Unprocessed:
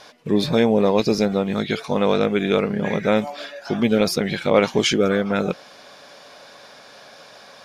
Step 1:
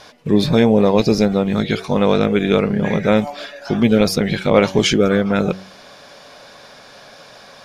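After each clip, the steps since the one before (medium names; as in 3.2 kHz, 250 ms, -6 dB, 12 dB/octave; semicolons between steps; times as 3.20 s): bass shelf 120 Hz +11.5 dB; de-hum 94.99 Hz, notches 9; trim +2.5 dB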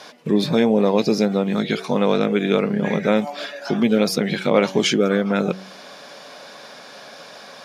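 in parallel at +2 dB: compression, threshold -23 dBFS, peak gain reduction 15 dB; on the sum: high-pass 160 Hz 24 dB/octave; trim -5.5 dB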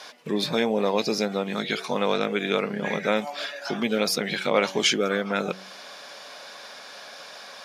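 bass shelf 470 Hz -12 dB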